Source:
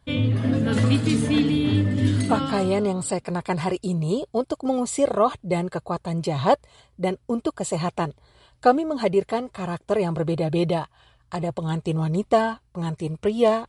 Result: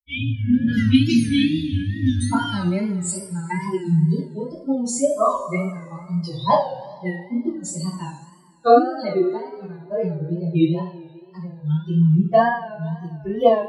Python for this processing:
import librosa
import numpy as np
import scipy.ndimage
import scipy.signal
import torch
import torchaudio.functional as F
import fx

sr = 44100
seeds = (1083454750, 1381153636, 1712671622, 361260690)

y = fx.bin_expand(x, sr, power=3.0)
y = fx.rev_double_slope(y, sr, seeds[0], early_s=0.46, late_s=2.1, knee_db=-17, drr_db=-8.5)
y = fx.wow_flutter(y, sr, seeds[1], rate_hz=2.1, depth_cents=100.0)